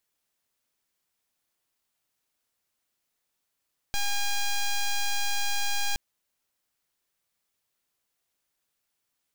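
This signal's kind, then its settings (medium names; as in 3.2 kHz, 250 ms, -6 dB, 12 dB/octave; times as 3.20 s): pulse 812 Hz, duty 7% -25.5 dBFS 2.02 s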